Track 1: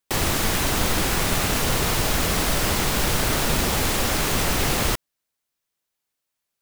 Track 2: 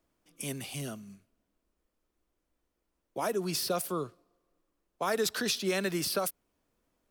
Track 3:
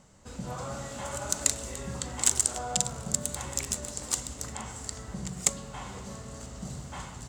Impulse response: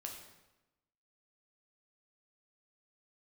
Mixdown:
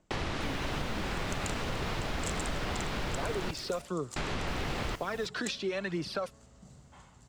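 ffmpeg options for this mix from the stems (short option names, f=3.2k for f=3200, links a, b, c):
-filter_complex "[0:a]volume=-5dB,asplit=3[a][b][c];[a]atrim=end=3.51,asetpts=PTS-STARTPTS,afade=t=out:st=3.506:d=0.004:c=hsin[d];[b]atrim=start=3.51:end=4.16,asetpts=PTS-STARTPTS,volume=0[e];[c]atrim=start=4.16,asetpts=PTS-STARTPTS,afade=t=in:d=0.004:c=hsin[f];[d][e][f]concat=n=3:v=0:a=1,asplit=2[g][h];[h]volume=-22.5dB[i];[1:a]aphaser=in_gain=1:out_gain=1:delay=3.8:decay=0.51:speed=1:type=triangular,volume=1dB[j];[2:a]volume=-15dB[k];[g][j]amix=inputs=2:normalize=0,lowpass=4.2k,acompressor=threshold=-31dB:ratio=4,volume=0dB[l];[i]aecho=0:1:309:1[m];[k][l][m]amix=inputs=3:normalize=0,highshelf=f=7.3k:g=-6"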